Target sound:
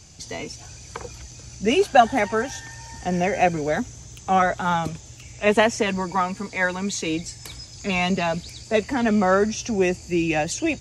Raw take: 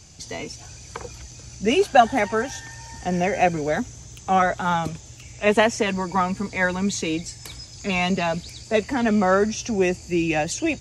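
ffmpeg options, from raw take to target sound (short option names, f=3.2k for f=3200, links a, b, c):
-filter_complex "[0:a]asettb=1/sr,asplit=3[a][b][c];[a]atrim=end=6.134[d];[b]atrim=start=6.13:end=7.06,asetpts=PTS-STARTPTS,afade=t=in:d=0.004:c=qsin,afade=t=out:st=0.926:d=0.004:c=qsin,lowshelf=f=240:g=-7[e];[c]atrim=start=7.056[f];[d][e]acrossfade=d=0.004:c1=hsin:c2=qsin[g];[g][f]acrossfade=d=0.004:c1=qsin:c2=hsin"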